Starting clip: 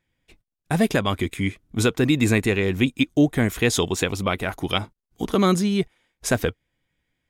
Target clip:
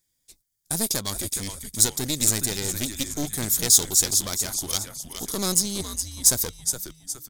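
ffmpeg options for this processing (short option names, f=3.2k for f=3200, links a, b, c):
-filter_complex "[0:a]asplit=6[a][b][c][d][e][f];[b]adelay=416,afreqshift=-120,volume=-9.5dB[g];[c]adelay=832,afreqshift=-240,volume=-17dB[h];[d]adelay=1248,afreqshift=-360,volume=-24.6dB[i];[e]adelay=1664,afreqshift=-480,volume=-32.1dB[j];[f]adelay=2080,afreqshift=-600,volume=-39.6dB[k];[a][g][h][i][j][k]amix=inputs=6:normalize=0,aeval=exprs='clip(val(0),-1,0.0562)':c=same,aexciter=amount=9.4:drive=7.8:freq=4.1k,volume=-9dB"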